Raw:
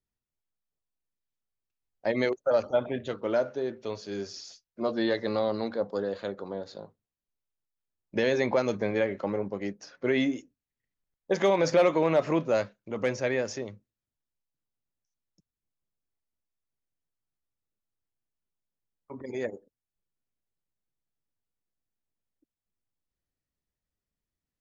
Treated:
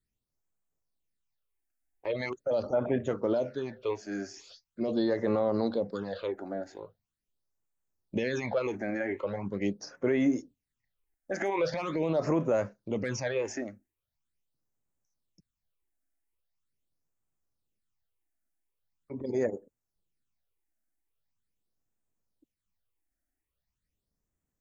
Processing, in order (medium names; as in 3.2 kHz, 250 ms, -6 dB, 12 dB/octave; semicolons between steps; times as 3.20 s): peak limiter -22.5 dBFS, peak gain reduction 9.5 dB; phase shifter stages 8, 0.42 Hz, lowest notch 130–4400 Hz; trim +4 dB